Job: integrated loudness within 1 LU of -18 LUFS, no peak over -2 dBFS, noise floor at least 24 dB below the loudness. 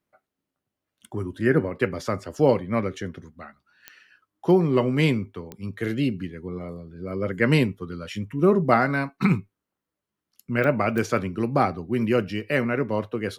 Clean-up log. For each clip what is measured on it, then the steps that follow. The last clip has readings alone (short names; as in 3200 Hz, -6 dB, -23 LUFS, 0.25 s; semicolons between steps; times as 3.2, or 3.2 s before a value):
clicks 4; loudness -24.0 LUFS; peak -4.0 dBFS; loudness target -18.0 LUFS
-> de-click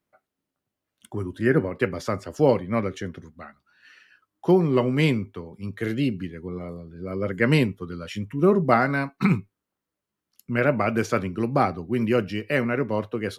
clicks 0; loudness -24.0 LUFS; peak -4.0 dBFS; loudness target -18.0 LUFS
-> gain +6 dB; limiter -2 dBFS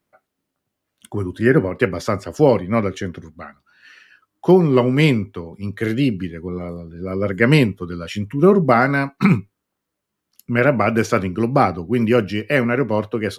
loudness -18.5 LUFS; peak -2.0 dBFS; noise floor -79 dBFS